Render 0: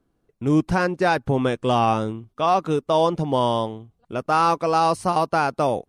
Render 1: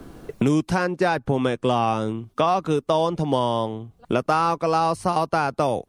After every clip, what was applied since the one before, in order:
multiband upward and downward compressor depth 100%
level −2 dB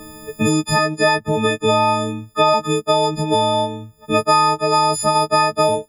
every partial snapped to a pitch grid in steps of 6 semitones
level +2.5 dB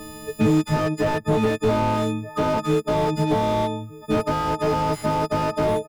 slap from a distant wall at 210 metres, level −22 dB
slew-rate limiting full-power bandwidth 74 Hz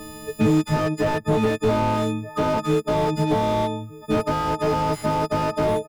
no processing that can be heard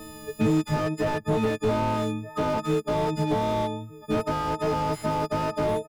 tape wow and flutter 16 cents
level −4 dB

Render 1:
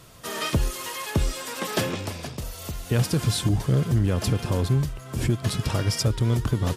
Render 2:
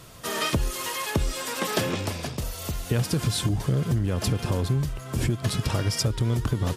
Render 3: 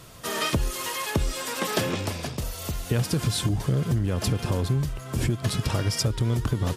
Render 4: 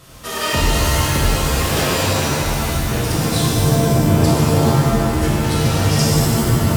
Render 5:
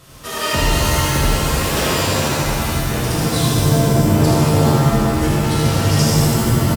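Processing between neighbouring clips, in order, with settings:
downward compressor, threshold −23 dBFS, peak gain reduction 6.5 dB; level +2.5 dB
no processing that can be heard
reverb with rising layers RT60 2.1 s, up +7 semitones, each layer −2 dB, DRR −6 dB
single-tap delay 80 ms −5 dB; level −1 dB

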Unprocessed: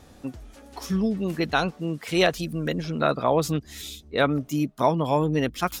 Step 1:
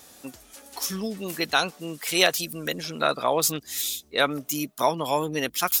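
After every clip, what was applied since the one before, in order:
RIAA equalisation recording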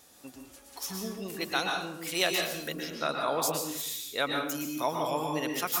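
dense smooth reverb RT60 0.77 s, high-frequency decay 0.7×, pre-delay 105 ms, DRR 1 dB
level −8 dB

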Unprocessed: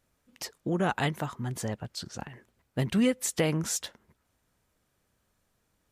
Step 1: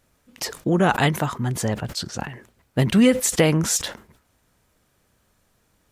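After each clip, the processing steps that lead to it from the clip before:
level that may fall only so fast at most 140 dB per second
level +9 dB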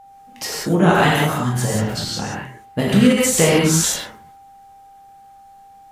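reverb whose tail is shaped and stops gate 210 ms flat, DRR −6 dB
steady tone 790 Hz −41 dBFS
every ending faded ahead of time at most 110 dB per second
level −1.5 dB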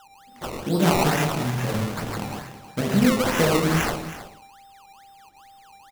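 sample-and-hold swept by an LFO 19×, swing 100% 2.3 Hz
single-tap delay 319 ms −13.5 dB
level −5.5 dB

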